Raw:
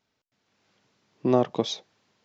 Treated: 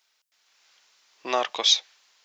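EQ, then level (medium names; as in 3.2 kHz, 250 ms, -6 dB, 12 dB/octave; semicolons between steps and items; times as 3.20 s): high-pass 950 Hz 12 dB/octave; dynamic bell 2.4 kHz, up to +6 dB, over -50 dBFS, Q 0.8; treble shelf 3.1 kHz +10 dB; +4.5 dB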